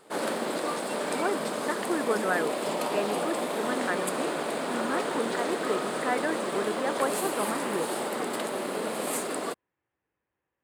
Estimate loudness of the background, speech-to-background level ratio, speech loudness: -30.5 LUFS, -2.5 dB, -33.0 LUFS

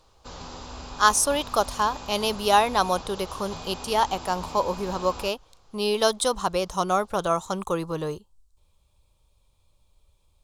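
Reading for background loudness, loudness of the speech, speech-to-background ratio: -39.5 LUFS, -25.0 LUFS, 14.5 dB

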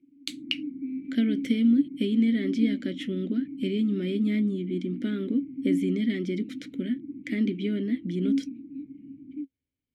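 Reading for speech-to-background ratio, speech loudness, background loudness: 7.5 dB, -28.0 LUFS, -35.5 LUFS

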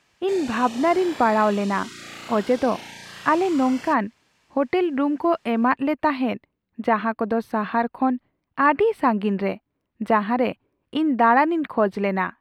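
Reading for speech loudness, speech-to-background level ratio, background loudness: -22.0 LUFS, 16.0 dB, -38.0 LUFS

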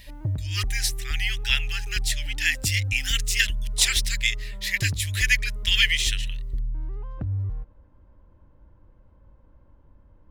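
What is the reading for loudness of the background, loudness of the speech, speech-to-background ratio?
-32.5 LUFS, -24.5 LUFS, 8.0 dB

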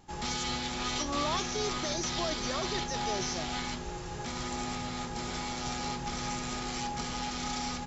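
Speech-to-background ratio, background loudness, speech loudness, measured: -1.0 dB, -34.5 LUFS, -35.5 LUFS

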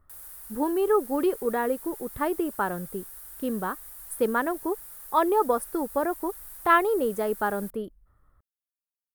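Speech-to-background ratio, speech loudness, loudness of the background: 14.0 dB, -27.0 LUFS, -41.0 LUFS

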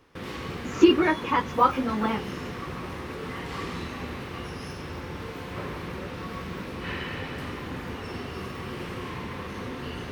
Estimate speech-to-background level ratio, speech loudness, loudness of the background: 12.0 dB, -23.5 LUFS, -35.5 LUFS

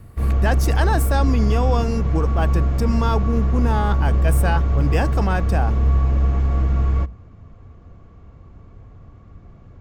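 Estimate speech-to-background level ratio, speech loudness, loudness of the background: -5.0 dB, -25.0 LUFS, -20.0 LUFS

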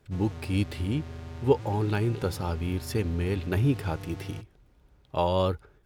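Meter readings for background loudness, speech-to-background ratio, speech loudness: -41.5 LUFS, 12.5 dB, -29.0 LUFS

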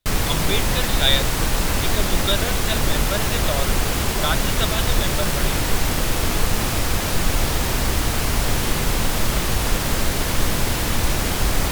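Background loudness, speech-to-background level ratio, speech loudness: -21.5 LUFS, -4.5 dB, -26.0 LUFS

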